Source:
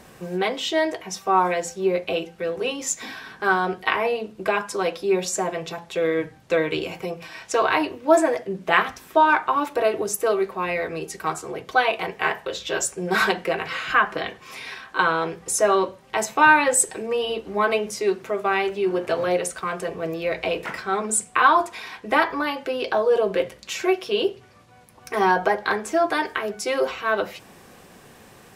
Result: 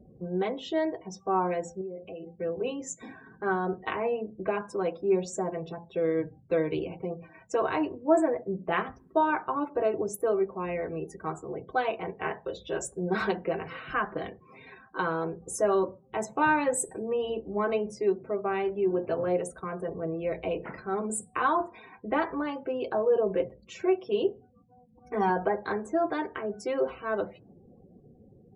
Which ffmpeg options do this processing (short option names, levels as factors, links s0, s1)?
-filter_complex "[0:a]asettb=1/sr,asplit=3[s0][s1][s2];[s0]atrim=end=1.814[s3];[s1]atrim=start=1.81:end=2.39,asetpts=PTS-STARTPTS,afade=t=in:d=0.004:c=qsin,afade=t=out:st=0.576:d=0.004:c=qsin,acompressor=threshold=0.0282:ratio=8:attack=3.2:release=140:knee=1:detection=peak[s4];[s2]atrim=start=2.386[s5];[s3][s4]acrossfade=d=0.004:c1=hsin:c2=qsin[s6];[s6][s5]acrossfade=d=0.004:c1=qsin:c2=hsin,asettb=1/sr,asplit=3[s7][s8][s9];[s7]atrim=end=24.304[s10];[s8]atrim=start=24.3:end=25.3,asetpts=PTS-STARTPTS,afade=t=in:d=0.004:c=qsin,afade=t=out:st=0.996:d=0.004:c=qsin,aecho=1:1:4.1:0.51,atrim=end_sample=44100[s11];[s9]atrim=start=25.296[s12];[s10][s11]acrossfade=d=0.004:c1=hsin:c2=qsin[s13];[s13][s12]acrossfade=d=0.004:c1=qsin:c2=hsin,tiltshelf=f=850:g=7.5,afftdn=nr=35:nf=-40,highshelf=f=6000:g=6,volume=0.376"